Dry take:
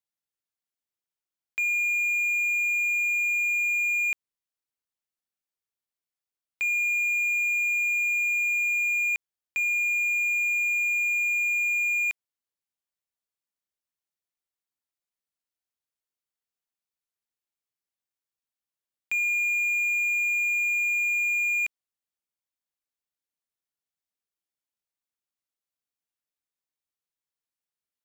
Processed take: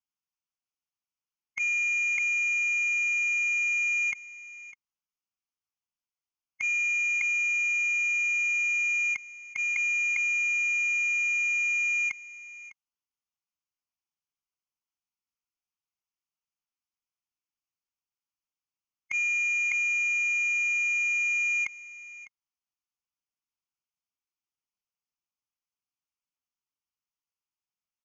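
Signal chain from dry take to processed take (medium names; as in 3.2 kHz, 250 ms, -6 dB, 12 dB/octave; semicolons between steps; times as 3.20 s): on a send: delay 603 ms -17.5 dB; on the sum: formant shift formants -2 st; Chebyshev low-pass 6.8 kHz, order 10; static phaser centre 2.6 kHz, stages 8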